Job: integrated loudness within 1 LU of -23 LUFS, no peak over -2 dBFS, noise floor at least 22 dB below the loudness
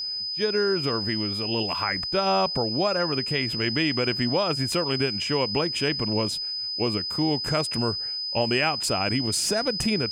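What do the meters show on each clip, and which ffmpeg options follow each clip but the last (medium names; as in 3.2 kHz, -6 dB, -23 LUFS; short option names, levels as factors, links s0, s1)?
steady tone 5 kHz; tone level -28 dBFS; loudness -24.5 LUFS; peak level -10.5 dBFS; loudness target -23.0 LUFS
-> -af "bandreject=f=5000:w=30"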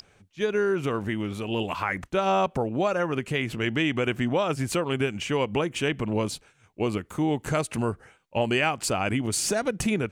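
steady tone not found; loudness -27.0 LUFS; peak level -11.5 dBFS; loudness target -23.0 LUFS
-> -af "volume=1.58"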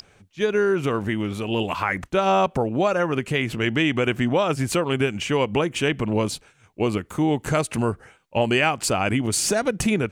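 loudness -23.0 LUFS; peak level -7.5 dBFS; noise floor -57 dBFS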